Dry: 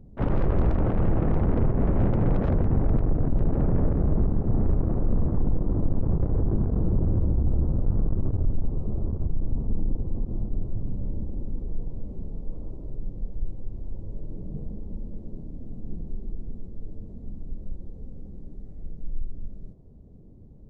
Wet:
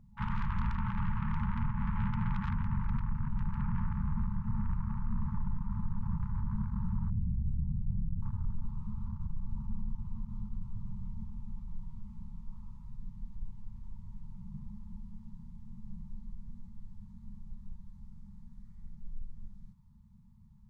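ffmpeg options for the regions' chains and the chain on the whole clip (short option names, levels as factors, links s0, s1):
-filter_complex "[0:a]asettb=1/sr,asplit=3[s0][s1][s2];[s0]atrim=end=7.104[s3];[s1]atrim=start=7.1:end=8.22,asetpts=PTS-STARTPTS,afade=t=in:d=0.004:c=qsin,afade=t=out:st=1.116:d=0.004:c=qsin,lowpass=f=270:t=q:w=1.7,bandreject=f=210:w=6[s4];[s2]atrim=start=8.216[s5];[s3][s4]acrossfade=d=0.004:c1=hsin:c2=qsin[s6];[s6][s5]acrossfade=d=0.004:c1=qsin:c2=hsin,afftfilt=real='re*(1-between(b*sr/4096,230,850))':imag='im*(1-between(b*sr/4096,230,850))':win_size=4096:overlap=0.75,lowshelf=f=280:g=-11"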